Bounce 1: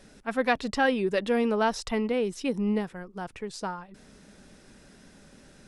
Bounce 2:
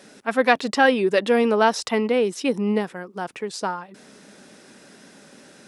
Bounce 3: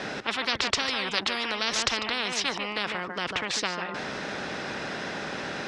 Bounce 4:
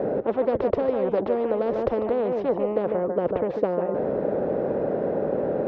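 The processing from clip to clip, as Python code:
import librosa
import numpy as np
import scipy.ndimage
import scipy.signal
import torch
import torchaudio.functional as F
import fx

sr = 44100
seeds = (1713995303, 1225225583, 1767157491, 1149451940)

y1 = scipy.signal.sosfilt(scipy.signal.butter(2, 230.0, 'highpass', fs=sr, output='sos'), x)
y1 = y1 * 10.0 ** (7.5 / 20.0)
y2 = fx.air_absorb(y1, sr, metres=200.0)
y2 = y2 + 10.0 ** (-16.5 / 20.0) * np.pad(y2, (int(147 * sr / 1000.0), 0))[:len(y2)]
y2 = fx.spectral_comp(y2, sr, ratio=10.0)
y2 = y2 * 10.0 ** (-1.5 / 20.0)
y3 = fx.lowpass_res(y2, sr, hz=520.0, q=3.4)
y3 = y3 * 10.0 ** (6.5 / 20.0)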